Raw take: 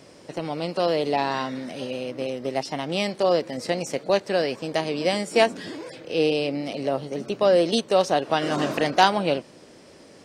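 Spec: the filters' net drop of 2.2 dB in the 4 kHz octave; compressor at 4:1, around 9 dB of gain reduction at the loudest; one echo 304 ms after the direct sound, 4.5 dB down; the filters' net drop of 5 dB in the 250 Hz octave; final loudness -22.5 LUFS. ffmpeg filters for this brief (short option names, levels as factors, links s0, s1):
-af "equalizer=f=250:t=o:g=-7,equalizer=f=4000:t=o:g=-3,acompressor=threshold=0.0631:ratio=4,aecho=1:1:304:0.596,volume=2.11"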